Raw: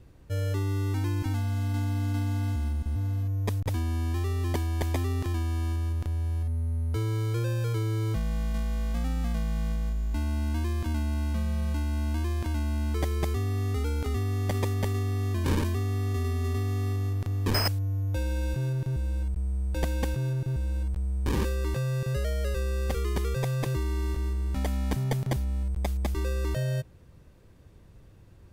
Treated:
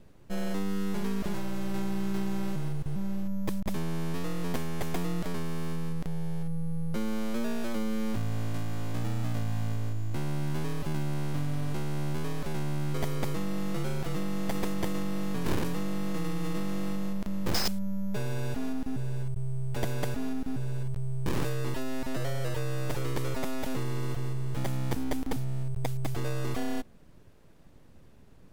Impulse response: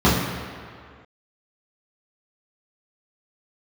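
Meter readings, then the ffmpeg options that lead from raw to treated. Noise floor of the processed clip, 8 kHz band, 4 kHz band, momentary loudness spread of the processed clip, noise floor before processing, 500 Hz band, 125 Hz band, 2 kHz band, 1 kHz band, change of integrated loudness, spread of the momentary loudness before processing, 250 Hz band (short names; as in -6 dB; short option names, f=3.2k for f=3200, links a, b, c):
-52 dBFS, 0.0 dB, -1.5 dB, 3 LU, -52 dBFS, -1.0 dB, -6.0 dB, -1.0 dB, -0.5 dB, -4.0 dB, 2 LU, +2.5 dB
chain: -af "aeval=exprs='abs(val(0))':c=same"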